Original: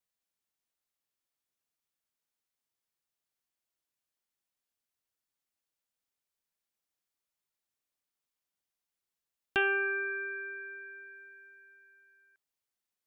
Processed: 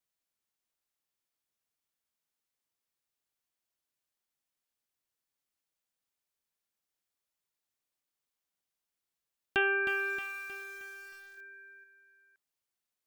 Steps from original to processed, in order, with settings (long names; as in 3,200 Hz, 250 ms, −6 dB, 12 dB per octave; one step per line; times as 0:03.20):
0:11.37–0:11.84: comb filter 2.5 ms, depth 80%
feedback echo at a low word length 313 ms, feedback 55%, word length 8 bits, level −7.5 dB